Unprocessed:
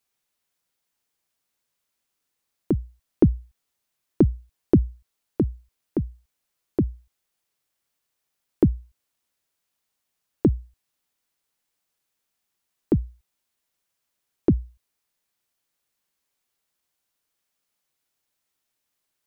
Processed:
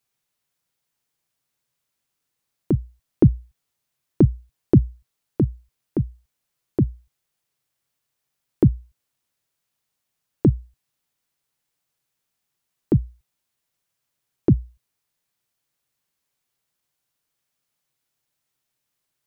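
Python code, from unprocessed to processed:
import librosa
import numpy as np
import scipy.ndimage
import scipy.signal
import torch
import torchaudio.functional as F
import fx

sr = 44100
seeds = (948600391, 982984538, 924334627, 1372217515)

y = fx.peak_eq(x, sr, hz=130.0, db=9.0, octaves=0.63)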